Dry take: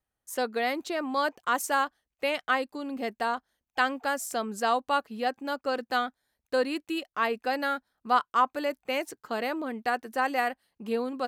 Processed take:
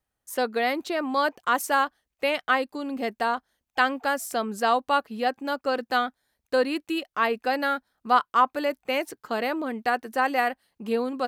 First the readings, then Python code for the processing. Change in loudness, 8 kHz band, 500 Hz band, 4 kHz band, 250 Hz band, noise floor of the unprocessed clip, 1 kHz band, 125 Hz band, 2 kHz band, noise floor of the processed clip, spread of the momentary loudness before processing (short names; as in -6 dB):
+3.5 dB, +0.5 dB, +3.5 dB, +3.0 dB, +3.5 dB, under -85 dBFS, +3.5 dB, n/a, +3.5 dB, -85 dBFS, 7 LU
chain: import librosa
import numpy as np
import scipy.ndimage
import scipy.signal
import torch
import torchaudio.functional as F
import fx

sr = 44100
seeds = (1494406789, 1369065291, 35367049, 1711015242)

y = fx.dynamic_eq(x, sr, hz=7100.0, q=1.8, threshold_db=-52.0, ratio=4.0, max_db=-5)
y = y * librosa.db_to_amplitude(3.5)